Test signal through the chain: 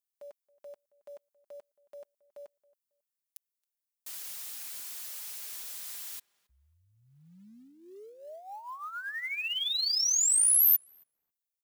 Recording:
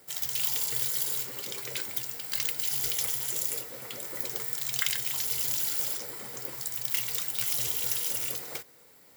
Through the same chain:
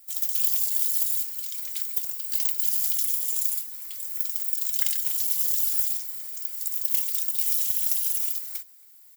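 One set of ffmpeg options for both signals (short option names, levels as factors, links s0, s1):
-filter_complex "[0:a]aderivative,aecho=1:1:4.9:0.46,acrusher=bits=6:mode=log:mix=0:aa=0.000001,asplit=2[s0][s1];[s1]adelay=273,lowpass=f=2000:p=1,volume=0.0794,asplit=2[s2][s3];[s3]adelay=273,lowpass=f=2000:p=1,volume=0.21[s4];[s0][s2][s4]amix=inputs=3:normalize=0"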